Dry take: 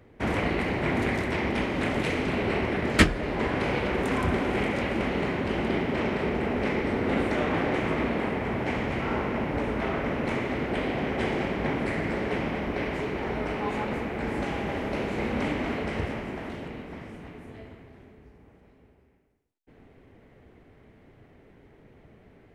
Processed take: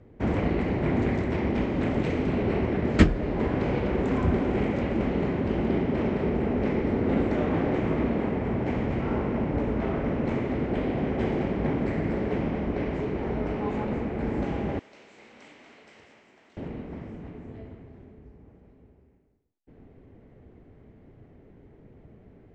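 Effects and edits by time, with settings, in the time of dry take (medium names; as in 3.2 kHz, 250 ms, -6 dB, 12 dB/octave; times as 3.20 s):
14.79–16.57 s: differentiator
whole clip: steep low-pass 8 kHz 96 dB/octave; tilt shelf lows +6.5 dB, about 790 Hz; trim -2.5 dB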